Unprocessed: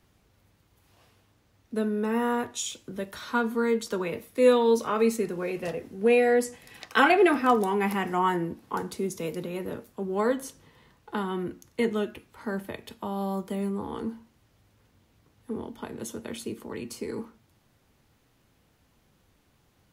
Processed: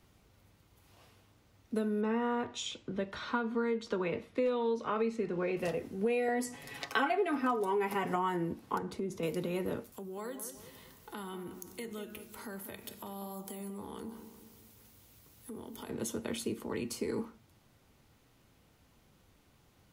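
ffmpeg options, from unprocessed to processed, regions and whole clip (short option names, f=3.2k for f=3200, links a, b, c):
-filter_complex "[0:a]asettb=1/sr,asplit=3[a][b][c];[a]atrim=end=2.014[d];[b]atrim=start=2.01:end=5.57,asetpts=PTS-STARTPTS,afade=t=in:d=0.004:c=qsin,afade=t=out:st=3.556:d=0.004:c=qsin,lowpass=3.8k,asoftclip=type=hard:threshold=-11.5dB[e];[c]atrim=start=5.566[f];[d][e]acrossfade=d=0.004:c1=hsin:c2=qsin[g];[g][f]acrossfade=d=0.004:c1=qsin:c2=hsin,asettb=1/sr,asplit=3[h][i][j];[h]atrim=end=6.284[k];[i]atrim=start=6.28:end=8.16,asetpts=PTS-STARTPTS,afade=t=in:d=0.004:c=qsin,afade=t=out:st=1.876:d=0.004:c=qsin,equalizer=f=520:w=0.38:g=4,aecho=1:1:7.2:0.65,atrim=end_sample=82908[l];[j]atrim=start=8.156[m];[k][l]acrossfade=d=0.004:c1=hsin:c2=qsin[n];[n][m]acrossfade=d=0.004:c1=qsin:c2=hsin,asettb=1/sr,asplit=3[o][p][q];[o]atrim=end=8.784[r];[p]atrim=start=8.78:end=9.23,asetpts=PTS-STARTPTS,afade=t=in:d=0.004:c=qsin,afade=t=out:st=0.446:d=0.004:c=qsin,lowpass=f=1.9k:p=1,acompressor=threshold=-32dB:ratio=4:attack=3.2:release=140:knee=1:detection=peak[s];[q]atrim=start=9.226[t];[r][s]acrossfade=d=0.004:c1=hsin:c2=qsin[u];[u][t]acrossfade=d=0.004:c1=qsin:c2=hsin,asettb=1/sr,asplit=3[v][w][x];[v]atrim=end=9.924[y];[w]atrim=start=9.92:end=15.89,asetpts=PTS-STARTPTS,afade=t=in:d=0.004:c=qsin,afade=t=out:st=5.966:d=0.004:c=qsin,aemphasis=mode=production:type=75fm,acompressor=threshold=-44dB:ratio=3:attack=3.2:release=140:knee=1:detection=peak,asplit=2[z][aa];[aa]adelay=191,lowpass=f=1.6k:p=1,volume=-9dB,asplit=2[ab][ac];[ac]adelay=191,lowpass=f=1.6k:p=1,volume=0.52,asplit=2[ad][ae];[ae]adelay=191,lowpass=f=1.6k:p=1,volume=0.52,asplit=2[af][ag];[ag]adelay=191,lowpass=f=1.6k:p=1,volume=0.52,asplit=2[ah][ai];[ai]adelay=191,lowpass=f=1.6k:p=1,volume=0.52,asplit=2[aj][ak];[ak]adelay=191,lowpass=f=1.6k:p=1,volume=0.52[al];[z][ab][ad][af][ah][aj][al]amix=inputs=7:normalize=0,atrim=end_sample=263277[am];[x]atrim=start=15.886[an];[y][am]acrossfade=d=0.004:c1=hsin:c2=qsin[ao];[ao][an]acrossfade=d=0.004:c1=qsin:c2=hsin,acompressor=threshold=-29dB:ratio=6,bandreject=f=1.7k:w=19"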